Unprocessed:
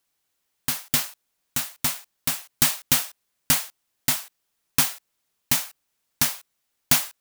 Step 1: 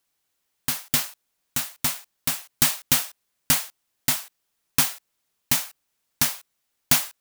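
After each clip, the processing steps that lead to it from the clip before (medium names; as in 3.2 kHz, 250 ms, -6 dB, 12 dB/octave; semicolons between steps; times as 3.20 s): no audible change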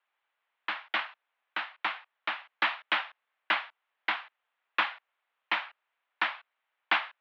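three-band isolator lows -23 dB, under 560 Hz, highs -17 dB, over 2.6 kHz; mistuned SSB +65 Hz 150–3600 Hz; trim +4.5 dB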